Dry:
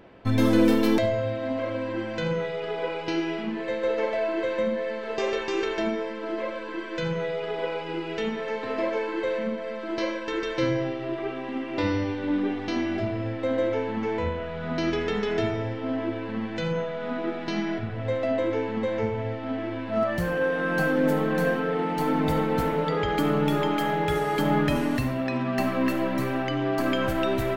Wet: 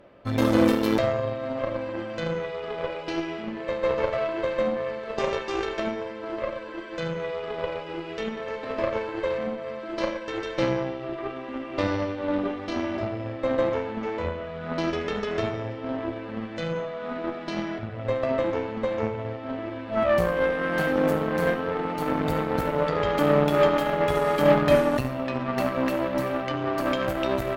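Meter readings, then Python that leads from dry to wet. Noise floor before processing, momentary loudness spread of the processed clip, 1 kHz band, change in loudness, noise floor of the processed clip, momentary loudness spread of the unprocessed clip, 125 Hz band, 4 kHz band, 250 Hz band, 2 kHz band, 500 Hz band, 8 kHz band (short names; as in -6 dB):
-34 dBFS, 11 LU, +1.0 dB, 0.0 dB, -37 dBFS, 7 LU, -1.5 dB, -1.0 dB, -2.0 dB, -0.5 dB, +1.5 dB, n/a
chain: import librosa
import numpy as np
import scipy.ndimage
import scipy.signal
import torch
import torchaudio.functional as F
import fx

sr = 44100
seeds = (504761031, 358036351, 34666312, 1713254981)

y = fx.small_body(x, sr, hz=(580.0, 1200.0), ring_ms=95, db=15)
y = fx.cheby_harmonics(y, sr, harmonics=(6, 7), levels_db=(-21, -25), full_scale_db=-6.5)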